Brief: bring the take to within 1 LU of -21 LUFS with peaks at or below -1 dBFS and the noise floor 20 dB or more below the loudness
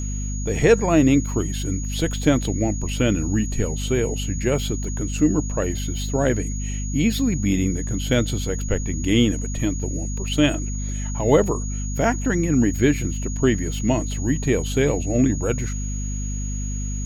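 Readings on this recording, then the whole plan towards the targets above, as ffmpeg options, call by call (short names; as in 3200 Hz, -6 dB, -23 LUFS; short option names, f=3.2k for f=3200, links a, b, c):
hum 50 Hz; harmonics up to 250 Hz; hum level -24 dBFS; steady tone 6700 Hz; tone level -34 dBFS; loudness -22.5 LUFS; peak -4.5 dBFS; loudness target -21.0 LUFS
-> -af "bandreject=f=50:t=h:w=6,bandreject=f=100:t=h:w=6,bandreject=f=150:t=h:w=6,bandreject=f=200:t=h:w=6,bandreject=f=250:t=h:w=6"
-af "bandreject=f=6.7k:w=30"
-af "volume=1.5dB"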